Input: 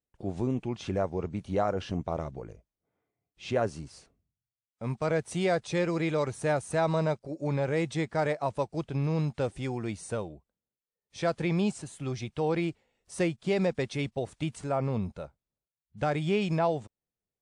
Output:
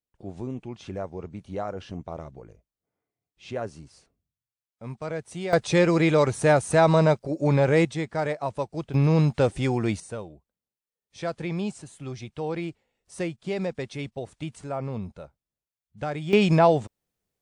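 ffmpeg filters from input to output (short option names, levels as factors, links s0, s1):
-af "asetnsamples=n=441:p=0,asendcmd='5.53 volume volume 8.5dB;7.85 volume volume 1dB;8.94 volume volume 8.5dB;10 volume volume -2dB;16.33 volume volume 9dB',volume=0.631"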